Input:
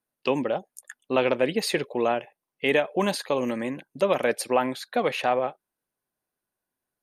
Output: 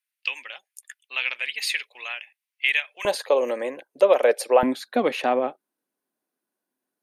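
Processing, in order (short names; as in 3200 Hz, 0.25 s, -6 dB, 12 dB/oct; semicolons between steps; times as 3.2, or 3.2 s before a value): resonant high-pass 2300 Hz, resonance Q 2.3, from 3.05 s 500 Hz, from 4.63 s 260 Hz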